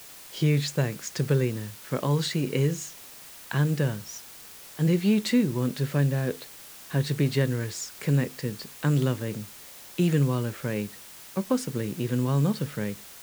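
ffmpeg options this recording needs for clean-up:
-af "afftdn=nr=25:nf=-46"

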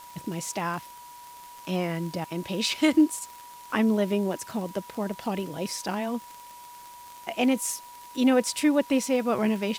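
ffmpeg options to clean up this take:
-af "adeclick=t=4,bandreject=f=970:w=30,afwtdn=0.0028"

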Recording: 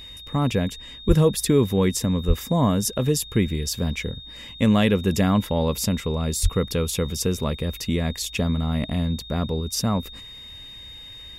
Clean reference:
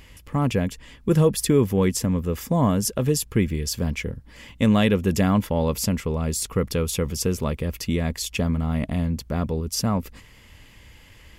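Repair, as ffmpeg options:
-filter_complex "[0:a]bandreject=f=3700:w=30,asplit=3[s0][s1][s2];[s0]afade=t=out:st=1.07:d=0.02[s3];[s1]highpass=f=140:w=0.5412,highpass=f=140:w=1.3066,afade=t=in:st=1.07:d=0.02,afade=t=out:st=1.19:d=0.02[s4];[s2]afade=t=in:st=1.19:d=0.02[s5];[s3][s4][s5]amix=inputs=3:normalize=0,asplit=3[s6][s7][s8];[s6]afade=t=out:st=2.27:d=0.02[s9];[s7]highpass=f=140:w=0.5412,highpass=f=140:w=1.3066,afade=t=in:st=2.27:d=0.02,afade=t=out:st=2.39:d=0.02[s10];[s8]afade=t=in:st=2.39:d=0.02[s11];[s9][s10][s11]amix=inputs=3:normalize=0,asplit=3[s12][s13][s14];[s12]afade=t=out:st=6.42:d=0.02[s15];[s13]highpass=f=140:w=0.5412,highpass=f=140:w=1.3066,afade=t=in:st=6.42:d=0.02,afade=t=out:st=6.54:d=0.02[s16];[s14]afade=t=in:st=6.54:d=0.02[s17];[s15][s16][s17]amix=inputs=3:normalize=0"

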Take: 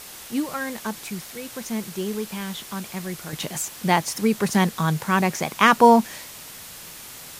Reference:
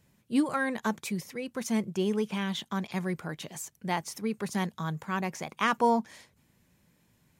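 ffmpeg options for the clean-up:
-af "afwtdn=0.011,asetnsamples=n=441:p=0,asendcmd='3.33 volume volume -11dB',volume=1"

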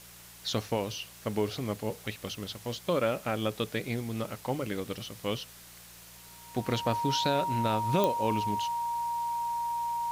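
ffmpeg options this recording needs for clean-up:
-af "adeclick=t=4,bandreject=f=58.4:t=h:w=4,bandreject=f=116.8:t=h:w=4,bandreject=f=175.2:t=h:w=4,bandreject=f=940:w=30,afwtdn=0.0032"

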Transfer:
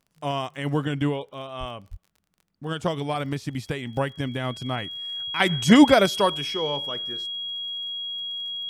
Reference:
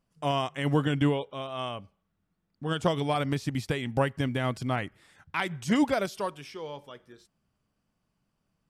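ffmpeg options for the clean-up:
-filter_complex "[0:a]adeclick=t=4,bandreject=f=3300:w=30,asplit=3[s0][s1][s2];[s0]afade=t=out:st=1.59:d=0.02[s3];[s1]highpass=f=140:w=0.5412,highpass=f=140:w=1.3066,afade=t=in:st=1.59:d=0.02,afade=t=out:st=1.71:d=0.02[s4];[s2]afade=t=in:st=1.71:d=0.02[s5];[s3][s4][s5]amix=inputs=3:normalize=0,asplit=3[s6][s7][s8];[s6]afade=t=out:st=1.9:d=0.02[s9];[s7]highpass=f=140:w=0.5412,highpass=f=140:w=1.3066,afade=t=in:st=1.9:d=0.02,afade=t=out:st=2.02:d=0.02[s10];[s8]afade=t=in:st=2.02:d=0.02[s11];[s9][s10][s11]amix=inputs=3:normalize=0,asetnsamples=n=441:p=0,asendcmd='5.4 volume volume -10.5dB',volume=1"

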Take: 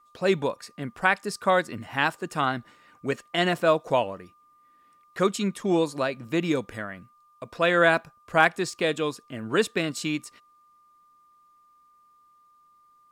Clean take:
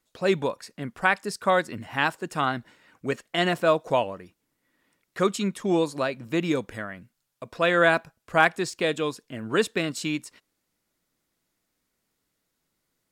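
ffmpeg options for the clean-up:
-af "bandreject=f=1200:w=30"

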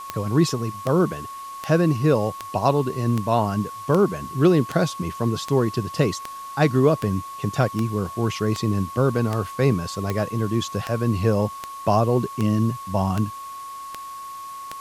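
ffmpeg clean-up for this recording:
-af "adeclick=t=4,bandreject=f=1100:w=30,afwtdn=0.005"

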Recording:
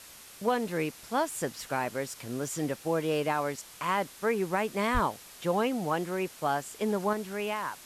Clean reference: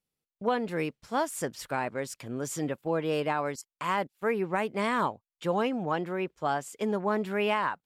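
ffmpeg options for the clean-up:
-filter_complex "[0:a]asplit=3[s0][s1][s2];[s0]afade=t=out:st=4.93:d=0.02[s3];[s1]highpass=f=140:w=0.5412,highpass=f=140:w=1.3066,afade=t=in:st=4.93:d=0.02,afade=t=out:st=5.05:d=0.02[s4];[s2]afade=t=in:st=5.05:d=0.02[s5];[s3][s4][s5]amix=inputs=3:normalize=0,afwtdn=0.004,asetnsamples=n=441:p=0,asendcmd='7.13 volume volume 5.5dB',volume=1"

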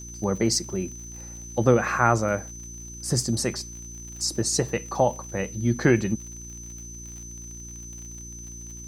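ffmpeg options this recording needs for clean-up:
-af "adeclick=t=4,bandreject=f=58.3:t=h:w=4,bandreject=f=116.6:t=h:w=4,bandreject=f=174.9:t=h:w=4,bandreject=f=233.2:t=h:w=4,bandreject=f=291.5:t=h:w=4,bandreject=f=349.8:t=h:w=4,bandreject=f=6100:w=30,agate=range=0.0891:threshold=0.0251"

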